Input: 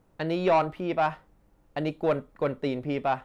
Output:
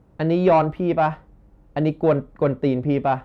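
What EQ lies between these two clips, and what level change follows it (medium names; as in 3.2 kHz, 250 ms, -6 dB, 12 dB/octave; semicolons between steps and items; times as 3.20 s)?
high-pass 46 Hz; tilt EQ -2.5 dB/octave; +4.5 dB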